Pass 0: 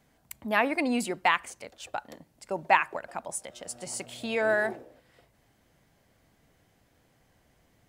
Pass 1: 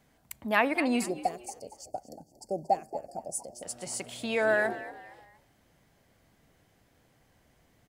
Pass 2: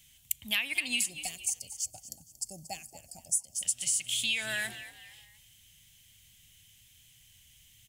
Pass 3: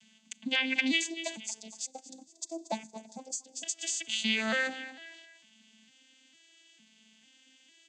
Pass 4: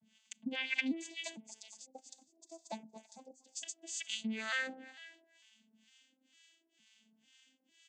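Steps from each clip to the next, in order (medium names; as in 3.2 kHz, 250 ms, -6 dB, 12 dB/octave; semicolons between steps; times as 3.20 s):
time-frequency box 1.05–3.63 s, 810–4300 Hz -29 dB; frequency-shifting echo 232 ms, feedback 37%, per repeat +61 Hz, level -15.5 dB
FFT filter 110 Hz 0 dB, 420 Hz -25 dB, 1.4 kHz -14 dB, 3.1 kHz +15 dB, 4.6 kHz +4 dB, 6.6 kHz +13 dB; compression 12:1, threshold -28 dBFS, peak gain reduction 11.5 dB; trim +2.5 dB
vocoder on a broken chord minor triad, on A3, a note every 452 ms; trim +2.5 dB
harmonic tremolo 2.1 Hz, depth 100%, crossover 820 Hz; trim -3 dB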